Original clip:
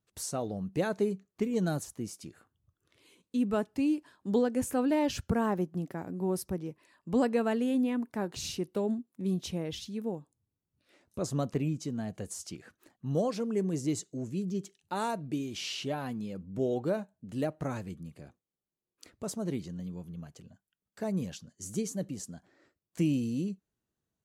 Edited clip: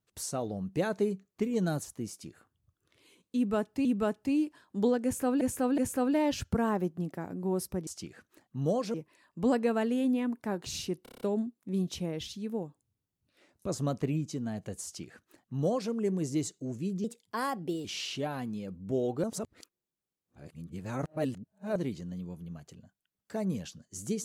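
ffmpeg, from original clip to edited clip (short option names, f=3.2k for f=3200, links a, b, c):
-filter_complex "[0:a]asplit=16[a][b][c][d][e][f][g][h][i][j][k][l][m][n][o][p];[a]atrim=end=3.852[q];[b]atrim=start=3.358:end=4.922[r];[c]atrim=start=4.548:end=4.922[s];[d]atrim=start=4.548:end=6.642[t];[e]atrim=start=12.358:end=13.432[u];[f]atrim=start=6.638:end=8.762[v];[g]atrim=start=8.728:end=8.762[w];[h]atrim=start=8.728:end=8.762[x];[i]atrim=start=8.728:end=8.762[y];[j]atrim=start=8.728:end=8.762[z];[k]atrim=start=8.728:end=8.762[aa];[l]atrim=start=8.728:end=14.564[ab];[m]atrim=start=14.56:end=15.52,asetpts=PTS-STARTPTS,asetrate=52479,aresample=44100,atrim=end_sample=35576,asetpts=PTS-STARTPTS[ac];[n]atrim=start=15.516:end=16.912[ad];[o]atrim=start=16.908:end=19.432,asetpts=PTS-STARTPTS,areverse[ae];[p]atrim=start=19.428[af];[q][r]acrossfade=d=0.004:c1=hsin:c2=hsin[ag];[ag][s]acrossfade=d=0.004:c1=hsin:c2=hsin[ah];[ah][t]acrossfade=d=0.004:c1=hsin:c2=hsin[ai];[ai][u]acrossfade=d=0.004:c1=hsin:c2=hsin[aj];[aj][v]acrossfade=d=0.004:c1=hsin:c2=hsin[ak];[ak][w]acrossfade=d=0.004:c1=hsin:c2=hsin[al];[al][x]acrossfade=d=0.004:c1=hsin:c2=hsin[am];[am][y]acrossfade=d=0.004:c1=hsin:c2=hsin[an];[an][z]acrossfade=d=0.004:c1=hsin:c2=hsin[ao];[ao][aa]acrossfade=d=0.004:c1=hsin:c2=hsin[ap];[ap][ab]acrossfade=d=0.004:c1=hsin:c2=hsin[aq];[aq][ac]acrossfade=d=0.004:c1=hsin:c2=hsin[ar];[ar][ad]acrossfade=d=0.004:c1=hsin:c2=hsin[as];[as][ae]acrossfade=d=0.004:c1=hsin:c2=hsin[at];[at][af]acrossfade=d=0.004:c1=hsin:c2=hsin"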